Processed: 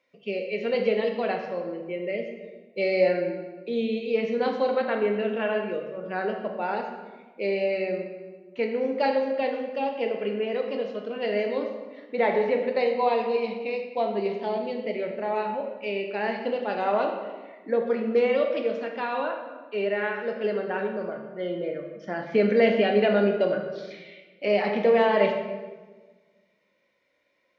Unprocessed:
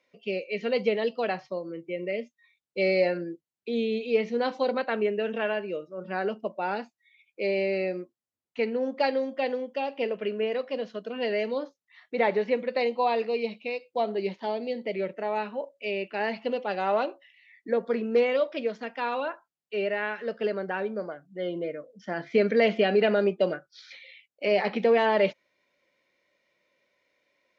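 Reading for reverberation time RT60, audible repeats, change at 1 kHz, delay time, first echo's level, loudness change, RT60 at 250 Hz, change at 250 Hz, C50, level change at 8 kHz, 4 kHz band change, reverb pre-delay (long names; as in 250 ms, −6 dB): 1.4 s, no echo audible, +2.0 dB, no echo audible, no echo audible, +1.5 dB, 1.6 s, +2.5 dB, 5.5 dB, can't be measured, −0.5 dB, 13 ms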